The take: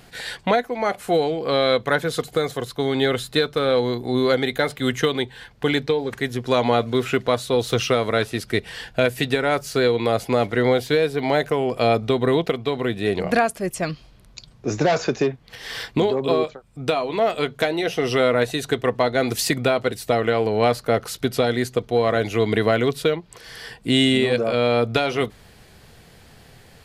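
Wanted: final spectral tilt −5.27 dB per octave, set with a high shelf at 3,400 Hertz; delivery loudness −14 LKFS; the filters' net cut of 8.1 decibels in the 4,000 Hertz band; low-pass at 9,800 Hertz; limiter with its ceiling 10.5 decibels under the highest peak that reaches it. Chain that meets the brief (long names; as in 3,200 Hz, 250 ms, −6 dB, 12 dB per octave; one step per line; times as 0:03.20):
low-pass filter 9,800 Hz
high-shelf EQ 3,400 Hz −3.5 dB
parametric band 4,000 Hz −8 dB
level +14 dB
brickwall limiter −3 dBFS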